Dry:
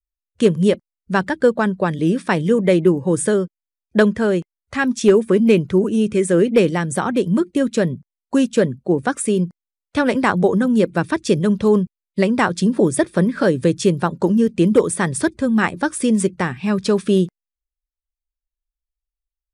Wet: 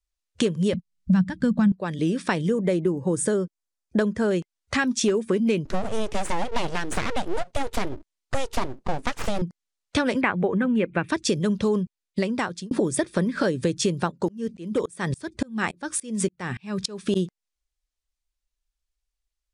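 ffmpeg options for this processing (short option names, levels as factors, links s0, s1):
-filter_complex "[0:a]asettb=1/sr,asplit=3[s0][s1][s2];[s0]atrim=end=0.734[s3];[s1]atrim=start=0.73:end=1.72,asetpts=PTS-STARTPTS,afade=t=in:d=0.004:c=qsin,afade=t=out:st=0.986:d=0.004:c=qsin,lowshelf=f=270:t=q:w=3:g=13.5[s4];[s2]atrim=start=1.716[s5];[s3][s4]acrossfade=d=0.004:c1=hsin:c2=qsin[s6];[s6][s5]acrossfade=d=0.004:c1=qsin:c2=hsin,asettb=1/sr,asplit=3[s7][s8][s9];[s7]atrim=end=2.464[s10];[s8]atrim=start=2.46:end=4.31,asetpts=PTS-STARTPTS,afade=t=in:d=0.004:c=qsin,afade=t=out:st=1.846:d=0.004:c=qsin,equalizer=f=3000:t=o:w=1.7:g=-6.5[s11];[s9]atrim=start=4.306[s12];[s10][s11]acrossfade=d=0.004:c1=hsin:c2=qsin[s13];[s13][s12]acrossfade=d=0.004:c1=qsin:c2=hsin,asettb=1/sr,asplit=3[s14][s15][s16];[s14]atrim=end=5.654[s17];[s15]atrim=start=5.65:end=9.42,asetpts=PTS-STARTPTS,afade=t=in:d=0.004:c=qsin,afade=t=out:st=3.766:d=0.004:c=qsin,aeval=exprs='abs(val(0))':c=same[s18];[s16]atrim=start=9.416[s19];[s17][s18]acrossfade=d=0.004:c1=hsin:c2=qsin[s20];[s20][s19]acrossfade=d=0.004:c1=qsin:c2=hsin,asettb=1/sr,asplit=3[s21][s22][s23];[s21]atrim=end=10.214[s24];[s22]atrim=start=10.21:end=11.09,asetpts=PTS-STARTPTS,afade=t=in:d=0.004:c=qsin,afade=t=out:st=0.876:d=0.004:c=qsin,highshelf=f=3500:t=q:w=3:g=-13.5[s25];[s23]atrim=start=11.086[s26];[s24][s25]acrossfade=d=0.004:c1=hsin:c2=qsin[s27];[s27][s26]acrossfade=d=0.004:c1=qsin:c2=hsin,asplit=3[s28][s29][s30];[s28]afade=t=out:st=14.1:d=0.02[s31];[s29]aeval=exprs='val(0)*pow(10,-33*if(lt(mod(-3.5*n/s,1),2*abs(-3.5)/1000),1-mod(-3.5*n/s,1)/(2*abs(-3.5)/1000),(mod(-3.5*n/s,1)-2*abs(-3.5)/1000)/(1-2*abs(-3.5)/1000))/20)':c=same,afade=t=in:st=14.1:d=0.02,afade=t=out:st=17.15:d=0.02[s32];[s30]afade=t=in:st=17.15:d=0.02[s33];[s31][s32][s33]amix=inputs=3:normalize=0,asplit=2[s34][s35];[s34]atrim=end=12.71,asetpts=PTS-STARTPTS,afade=t=out:st=11.83:d=0.88[s36];[s35]atrim=start=12.71,asetpts=PTS-STARTPTS,afade=t=in:d=0.004:c=hsin[s37];[s36][s37]concat=n=2:v=0:a=1,lowpass=7300,highshelf=f=3600:g=8.5,acompressor=threshold=0.0501:ratio=4,volume=1.58"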